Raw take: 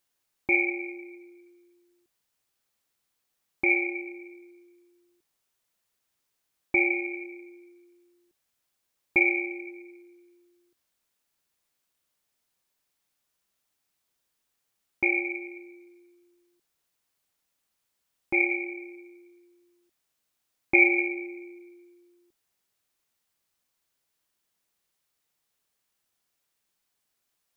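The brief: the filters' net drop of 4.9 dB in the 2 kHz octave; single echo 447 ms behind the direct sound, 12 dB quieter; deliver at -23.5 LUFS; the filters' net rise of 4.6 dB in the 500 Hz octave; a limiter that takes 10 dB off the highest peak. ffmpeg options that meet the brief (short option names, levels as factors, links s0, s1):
-af "equalizer=f=500:t=o:g=9,equalizer=f=2000:t=o:g=-6,alimiter=limit=0.133:level=0:latency=1,aecho=1:1:447:0.251,volume=2.37"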